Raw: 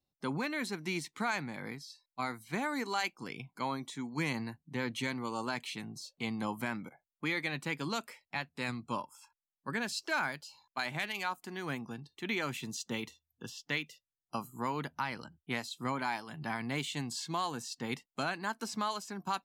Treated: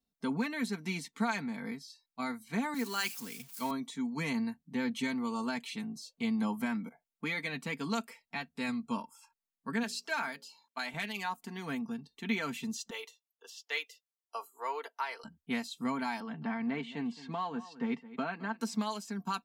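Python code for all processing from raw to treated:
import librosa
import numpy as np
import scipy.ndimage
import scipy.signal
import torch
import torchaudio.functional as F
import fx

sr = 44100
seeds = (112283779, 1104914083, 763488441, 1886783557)

y = fx.chain(x, sr, fx.crossing_spikes(level_db=-33.0),
    fx.band_widen(depth_pct=70), at=(2.74, 3.71))
y = fx.chain(y, sr, fx.highpass(hz=340.0, slope=6),
    fx.hum_notches(base_hz=60, count=9), at=(9.83, 10.94))
y = fx.chain(y, sr, fx.steep_highpass(hz=390.0, slope=48),
    fx.band_widen(depth_pct=40), at=(12.9, 15.24))
y = fx.chain(y, sr, fx.bandpass_edges(low_hz=150.0, high_hz=2300.0),
    fx.echo_single(ms=216, db=-18.0),
    fx.band_squash(depth_pct=40), at=(16.2, 18.61))
y = fx.peak_eq(y, sr, hz=230.0, db=5.5, octaves=0.67)
y = y + 0.7 * np.pad(y, (int(4.4 * sr / 1000.0), 0))[:len(y)]
y = F.gain(torch.from_numpy(y), -3.0).numpy()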